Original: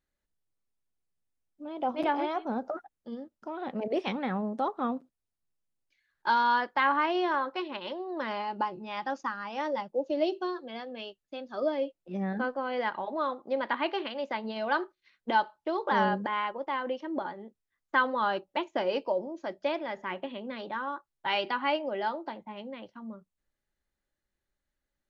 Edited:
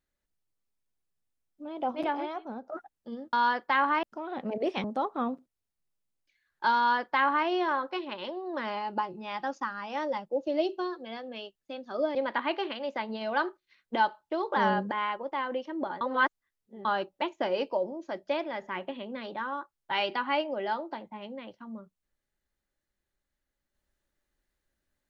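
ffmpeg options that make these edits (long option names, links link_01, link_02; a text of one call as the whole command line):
ffmpeg -i in.wav -filter_complex "[0:a]asplit=8[link_01][link_02][link_03][link_04][link_05][link_06][link_07][link_08];[link_01]atrim=end=2.72,asetpts=PTS-STARTPTS,afade=type=out:start_time=1.77:duration=0.95:silence=0.298538[link_09];[link_02]atrim=start=2.72:end=3.332,asetpts=PTS-STARTPTS,afade=type=in:duration=0.004:curve=hsin:silence=0.298538[link_10];[link_03]atrim=start=6.398:end=7.102[link_11];[link_04]atrim=start=3.328:end=4.142[link_12];[link_05]atrim=start=4.468:end=11.782[link_13];[link_06]atrim=start=13.498:end=17.362[link_14];[link_07]atrim=start=17.358:end=18.202,asetpts=PTS-STARTPTS,areverse[link_15];[link_08]atrim=start=18.198[link_16];[link_09][link_10]concat=n=2:v=0:a=1[link_17];[link_17][link_11]acrossfade=duration=0.004:curve1=hsin:curve2=hsin[link_18];[link_18][link_12]acrossfade=duration=0.004:curve1=hsin:curve2=hsin[link_19];[link_19][link_13]acrossfade=duration=0.004:curve1=hsin:curve2=hsin[link_20];[link_20][link_14]acrossfade=duration=0.004:curve1=hsin:curve2=hsin[link_21];[link_21][link_15]acrossfade=duration=0.004:curve1=hsin:curve2=hsin[link_22];[link_22][link_16]acrossfade=duration=0.004:curve1=hsin:curve2=hsin" out.wav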